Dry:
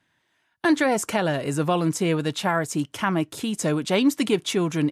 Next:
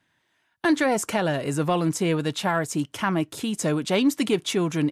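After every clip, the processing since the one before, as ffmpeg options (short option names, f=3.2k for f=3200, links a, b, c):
-af "acontrast=72,volume=-7dB"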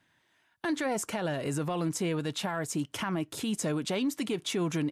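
-af "alimiter=limit=-23dB:level=0:latency=1:release=185"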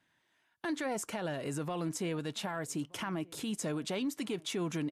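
-filter_complex "[0:a]equalizer=f=91:t=o:w=1:g=-4,aresample=32000,aresample=44100,asplit=2[a][b];[b]adelay=1224,volume=-24dB,highshelf=f=4k:g=-27.6[c];[a][c]amix=inputs=2:normalize=0,volume=-4.5dB"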